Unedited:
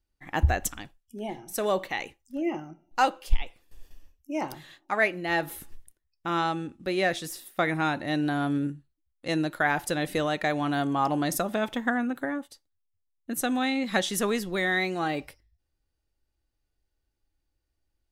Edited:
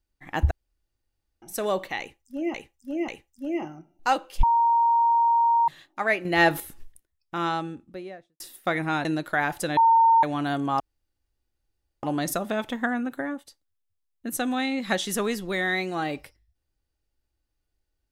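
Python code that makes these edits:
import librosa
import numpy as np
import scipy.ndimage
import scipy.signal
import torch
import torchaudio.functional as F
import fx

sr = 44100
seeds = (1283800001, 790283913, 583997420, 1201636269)

y = fx.studio_fade_out(x, sr, start_s=6.36, length_s=0.96)
y = fx.edit(y, sr, fx.room_tone_fill(start_s=0.51, length_s=0.91),
    fx.repeat(start_s=2.0, length_s=0.54, count=3),
    fx.bleep(start_s=3.35, length_s=1.25, hz=931.0, db=-17.0),
    fx.clip_gain(start_s=5.17, length_s=0.35, db=7.5),
    fx.cut(start_s=7.97, length_s=1.35),
    fx.bleep(start_s=10.04, length_s=0.46, hz=912.0, db=-14.0),
    fx.insert_room_tone(at_s=11.07, length_s=1.23), tone=tone)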